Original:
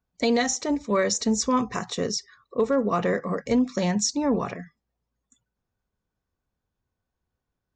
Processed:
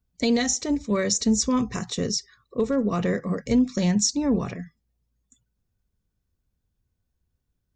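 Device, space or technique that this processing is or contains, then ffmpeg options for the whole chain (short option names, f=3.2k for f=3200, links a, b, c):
smiley-face EQ: -af "lowshelf=f=140:g=8.5,equalizer=f=920:t=o:w=2.1:g=-8,highshelf=f=7.4k:g=3.5,volume=1.5dB"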